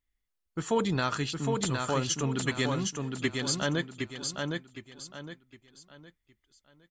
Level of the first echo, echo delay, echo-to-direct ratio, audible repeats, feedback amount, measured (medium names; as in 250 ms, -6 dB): -4.0 dB, 762 ms, -3.5 dB, 4, 33%